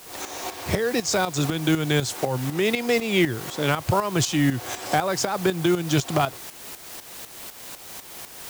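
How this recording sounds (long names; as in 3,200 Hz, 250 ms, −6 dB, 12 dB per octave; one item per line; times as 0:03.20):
a quantiser's noise floor 6 bits, dither triangular
tremolo saw up 4 Hz, depth 70%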